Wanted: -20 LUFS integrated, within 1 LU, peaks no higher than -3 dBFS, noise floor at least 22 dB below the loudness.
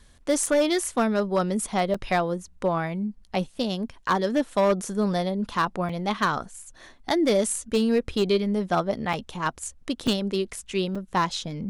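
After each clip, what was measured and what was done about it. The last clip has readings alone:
clipped 0.7%; flat tops at -15.0 dBFS; dropouts 6; longest dropout 4.4 ms; loudness -25.5 LUFS; peak -15.0 dBFS; loudness target -20.0 LUFS
-> clip repair -15 dBFS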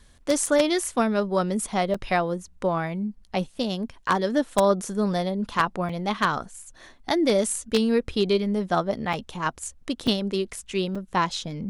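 clipped 0.0%; dropouts 6; longest dropout 4.4 ms
-> interpolate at 0.46/1.94/5.89/9.13/10.07/10.95, 4.4 ms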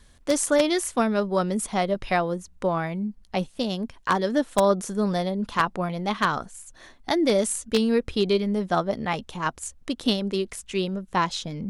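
dropouts 0; loudness -25.5 LUFS; peak -6.0 dBFS; loudness target -20.0 LUFS
-> gain +5.5 dB; limiter -3 dBFS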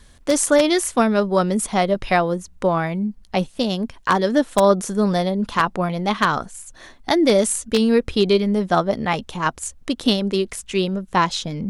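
loudness -20.0 LUFS; peak -3.0 dBFS; noise floor -48 dBFS

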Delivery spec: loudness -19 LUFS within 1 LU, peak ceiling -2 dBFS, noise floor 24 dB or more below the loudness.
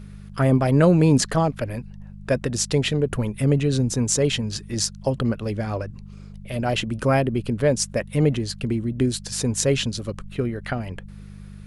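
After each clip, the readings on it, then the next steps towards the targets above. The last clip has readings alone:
hum 50 Hz; harmonics up to 200 Hz; hum level -38 dBFS; loudness -22.5 LUFS; peak -3.0 dBFS; loudness target -19.0 LUFS
-> de-hum 50 Hz, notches 4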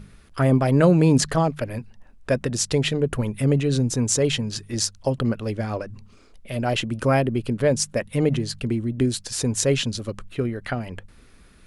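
hum none; loudness -23.0 LUFS; peak -2.5 dBFS; loudness target -19.0 LUFS
-> gain +4 dB; limiter -2 dBFS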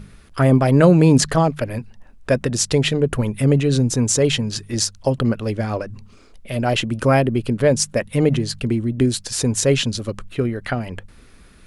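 loudness -19.0 LUFS; peak -2.0 dBFS; noise floor -47 dBFS

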